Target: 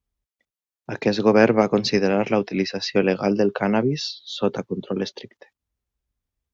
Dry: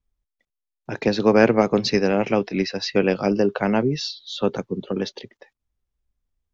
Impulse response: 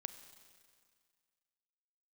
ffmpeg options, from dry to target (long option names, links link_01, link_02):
-af "highpass=46"